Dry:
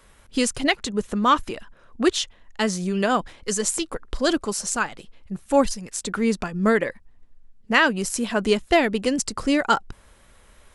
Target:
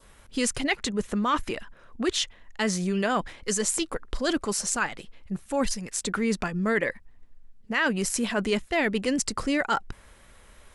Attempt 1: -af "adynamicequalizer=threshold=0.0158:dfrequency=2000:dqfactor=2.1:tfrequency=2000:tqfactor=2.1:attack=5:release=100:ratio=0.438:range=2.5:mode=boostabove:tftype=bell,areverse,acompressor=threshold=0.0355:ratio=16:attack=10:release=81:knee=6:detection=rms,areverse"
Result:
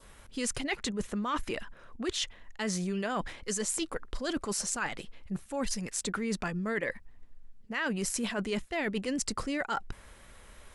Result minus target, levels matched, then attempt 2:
compression: peak gain reduction +8 dB
-af "adynamicequalizer=threshold=0.0158:dfrequency=2000:dqfactor=2.1:tfrequency=2000:tqfactor=2.1:attack=5:release=100:ratio=0.438:range=2.5:mode=boostabove:tftype=bell,areverse,acompressor=threshold=0.0944:ratio=16:attack=10:release=81:knee=6:detection=rms,areverse"

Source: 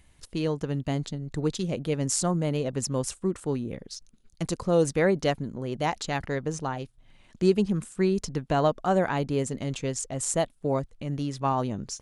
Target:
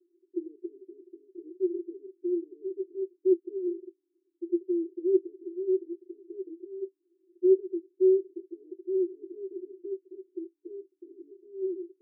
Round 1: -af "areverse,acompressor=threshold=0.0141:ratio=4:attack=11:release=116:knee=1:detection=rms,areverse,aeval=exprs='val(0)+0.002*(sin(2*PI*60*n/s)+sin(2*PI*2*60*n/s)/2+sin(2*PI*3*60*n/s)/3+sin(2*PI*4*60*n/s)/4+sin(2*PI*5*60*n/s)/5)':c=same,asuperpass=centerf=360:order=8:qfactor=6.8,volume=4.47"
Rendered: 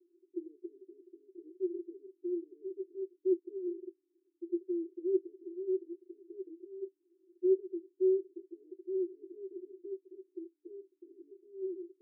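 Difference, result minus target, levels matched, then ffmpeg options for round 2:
compression: peak gain reduction +6.5 dB
-af "areverse,acompressor=threshold=0.0376:ratio=4:attack=11:release=116:knee=1:detection=rms,areverse,aeval=exprs='val(0)+0.002*(sin(2*PI*60*n/s)+sin(2*PI*2*60*n/s)/2+sin(2*PI*3*60*n/s)/3+sin(2*PI*4*60*n/s)/4+sin(2*PI*5*60*n/s)/5)':c=same,asuperpass=centerf=360:order=8:qfactor=6.8,volume=4.47"

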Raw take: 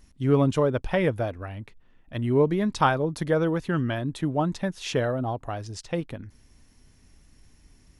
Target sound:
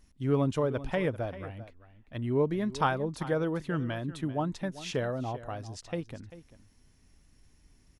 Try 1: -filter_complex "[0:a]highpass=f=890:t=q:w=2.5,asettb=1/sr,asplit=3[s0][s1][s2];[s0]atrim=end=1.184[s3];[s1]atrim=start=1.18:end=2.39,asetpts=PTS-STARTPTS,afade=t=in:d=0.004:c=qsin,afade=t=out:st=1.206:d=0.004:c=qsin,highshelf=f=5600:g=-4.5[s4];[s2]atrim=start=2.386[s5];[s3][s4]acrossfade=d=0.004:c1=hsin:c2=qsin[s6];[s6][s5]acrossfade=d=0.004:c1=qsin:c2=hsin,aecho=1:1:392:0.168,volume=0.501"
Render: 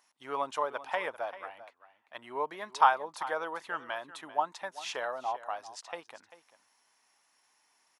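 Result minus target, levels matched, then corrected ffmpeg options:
1 kHz band +8.0 dB
-filter_complex "[0:a]asettb=1/sr,asplit=3[s0][s1][s2];[s0]atrim=end=1.184[s3];[s1]atrim=start=1.18:end=2.39,asetpts=PTS-STARTPTS,afade=t=in:d=0.004:c=qsin,afade=t=out:st=1.206:d=0.004:c=qsin,highshelf=f=5600:g=-4.5[s4];[s2]atrim=start=2.386[s5];[s3][s4]acrossfade=d=0.004:c1=hsin:c2=qsin[s6];[s6][s5]acrossfade=d=0.004:c1=qsin:c2=hsin,aecho=1:1:392:0.168,volume=0.501"

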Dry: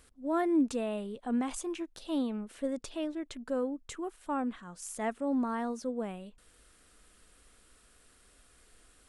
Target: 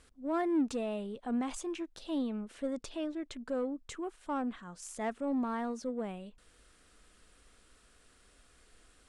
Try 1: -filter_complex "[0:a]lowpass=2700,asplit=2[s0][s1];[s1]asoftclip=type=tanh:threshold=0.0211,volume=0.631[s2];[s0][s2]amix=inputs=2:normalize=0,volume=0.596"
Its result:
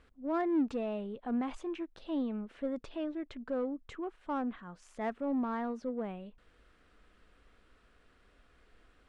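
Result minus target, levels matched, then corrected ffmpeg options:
8 kHz band -16.0 dB
-filter_complex "[0:a]lowpass=8200,asplit=2[s0][s1];[s1]asoftclip=type=tanh:threshold=0.0211,volume=0.631[s2];[s0][s2]amix=inputs=2:normalize=0,volume=0.596"

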